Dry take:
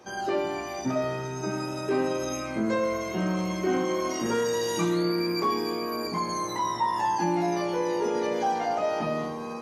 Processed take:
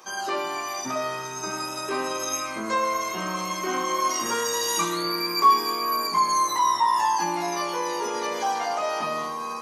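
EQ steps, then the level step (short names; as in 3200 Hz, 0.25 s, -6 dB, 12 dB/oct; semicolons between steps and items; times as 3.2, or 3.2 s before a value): tilt +3.5 dB/oct; bell 1100 Hz +11 dB 0.37 oct; 0.0 dB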